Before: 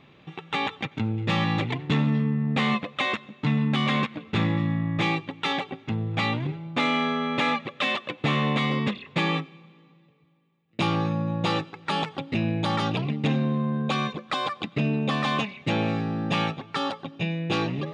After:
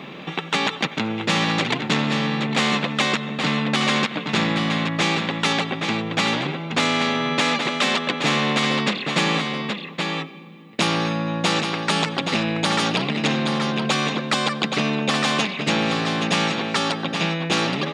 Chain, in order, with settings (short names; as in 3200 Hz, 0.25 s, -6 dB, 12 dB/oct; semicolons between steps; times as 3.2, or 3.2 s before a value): resonant low shelf 130 Hz -12.5 dB, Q 3; echo 0.824 s -9.5 dB; spectral compressor 2:1; gain +4 dB